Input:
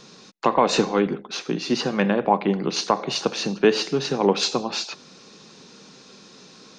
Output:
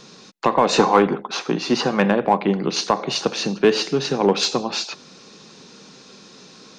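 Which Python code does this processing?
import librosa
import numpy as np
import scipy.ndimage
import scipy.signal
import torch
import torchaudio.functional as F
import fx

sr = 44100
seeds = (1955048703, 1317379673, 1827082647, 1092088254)

p1 = fx.peak_eq(x, sr, hz=930.0, db=fx.line((0.78, 14.0), (2.14, 4.5)), octaves=1.3, at=(0.78, 2.14), fade=0.02)
p2 = np.clip(p1, -10.0 ** (-13.0 / 20.0), 10.0 ** (-13.0 / 20.0))
p3 = p1 + (p2 * 10.0 ** (-5.0 / 20.0))
y = p3 * 10.0 ** (-1.5 / 20.0)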